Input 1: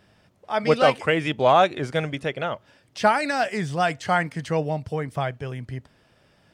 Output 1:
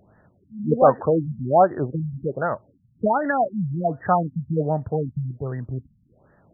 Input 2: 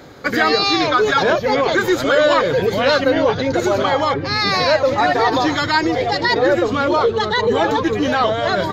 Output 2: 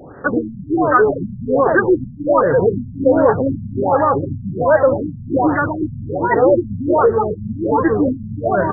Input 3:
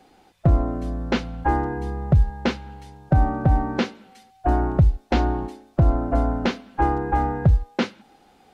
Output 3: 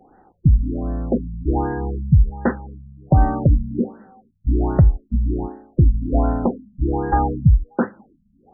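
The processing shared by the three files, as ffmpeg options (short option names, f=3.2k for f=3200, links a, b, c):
-af "afftfilt=real='re*lt(b*sr/1024,220*pow(2000/220,0.5+0.5*sin(2*PI*1.3*pts/sr)))':imag='im*lt(b*sr/1024,220*pow(2000/220,0.5+0.5*sin(2*PI*1.3*pts/sr)))':win_size=1024:overlap=0.75,volume=3.5dB"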